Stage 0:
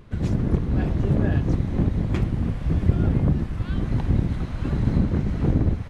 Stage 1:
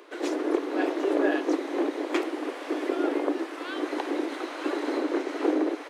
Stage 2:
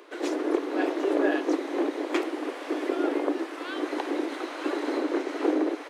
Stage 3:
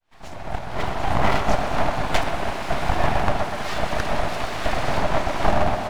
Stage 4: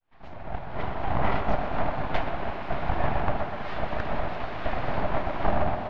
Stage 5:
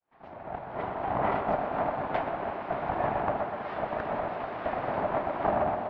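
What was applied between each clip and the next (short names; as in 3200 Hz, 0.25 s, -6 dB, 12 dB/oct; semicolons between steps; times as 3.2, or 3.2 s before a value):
steep high-pass 290 Hz 96 dB/oct; gain +6 dB
nothing audible
opening faded in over 1.48 s; full-wave rectifier; tape echo 0.125 s, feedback 81%, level -6 dB, low-pass 2100 Hz; gain +8.5 dB
flange 1.1 Hz, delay 9.4 ms, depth 9.4 ms, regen -77%; air absorption 320 m
band-pass 610 Hz, Q 0.53; gain +1 dB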